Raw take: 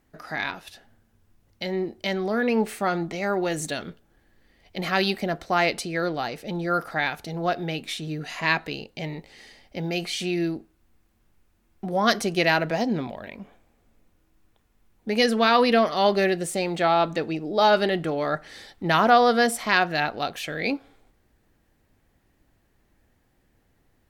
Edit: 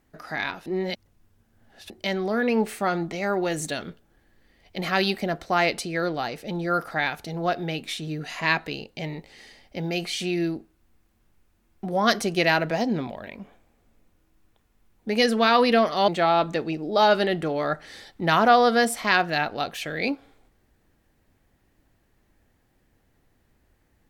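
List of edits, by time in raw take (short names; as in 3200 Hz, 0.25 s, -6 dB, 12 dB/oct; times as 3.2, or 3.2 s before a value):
0.66–1.9 reverse
16.08–16.7 cut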